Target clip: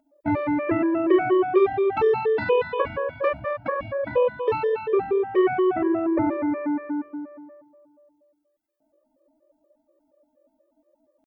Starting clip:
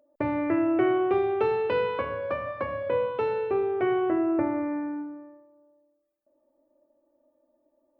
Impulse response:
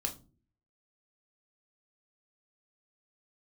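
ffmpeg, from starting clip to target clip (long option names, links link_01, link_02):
-af "atempo=0.71,afftfilt=real='re*gt(sin(2*PI*4.2*pts/sr)*(1-2*mod(floor(b*sr/1024/320),2)),0)':imag='im*gt(sin(2*PI*4.2*pts/sr)*(1-2*mod(floor(b*sr/1024/320),2)),0)':win_size=1024:overlap=0.75,volume=7dB"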